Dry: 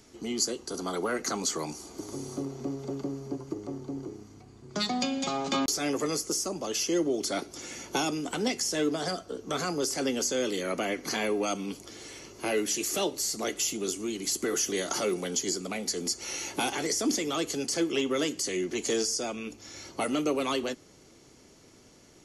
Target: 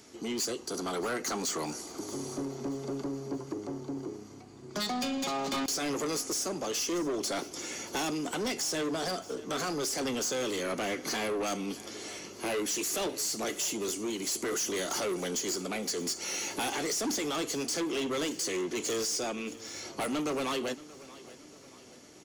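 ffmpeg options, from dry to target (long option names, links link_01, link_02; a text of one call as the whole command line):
ffmpeg -i in.wav -filter_complex "[0:a]highpass=frequency=180:poles=1,asoftclip=type=tanh:threshold=-31.5dB,asplit=2[link_01][link_02];[link_02]aecho=0:1:629|1258|1887|2516:0.112|0.0527|0.0248|0.0116[link_03];[link_01][link_03]amix=inputs=2:normalize=0,volume=3dB" out.wav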